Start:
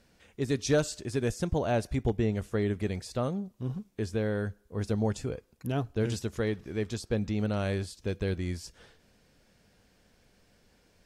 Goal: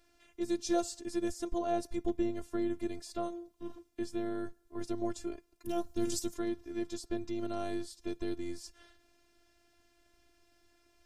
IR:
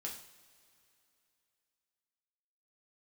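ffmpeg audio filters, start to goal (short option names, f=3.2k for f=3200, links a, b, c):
-filter_complex "[0:a]asettb=1/sr,asplit=3[a][b][c];[a]atrim=end=5.674[d];[b]atrim=start=5.67:end=6.34,asetpts=PTS-STARTPTS,afade=t=in:d=0.004:c=qsin,afade=t=out:st=0.666:d=0.004:c=qsin,bass=f=250:g=5,treble=f=4k:g=11[e];[c]atrim=start=6.336[f];[d][e]acrossfade=d=0.004:c1=hsin:c2=qsin[g];[g][f]acrossfade=d=0.004:c1=qsin:c2=hsin,acrossover=split=340|1400|3500[h][i][j][k];[j]acompressor=threshold=-57dB:ratio=10[l];[h][i][l][k]amix=inputs=4:normalize=0,afftfilt=real='hypot(re,im)*cos(PI*b)':imag='0':win_size=512:overlap=0.75"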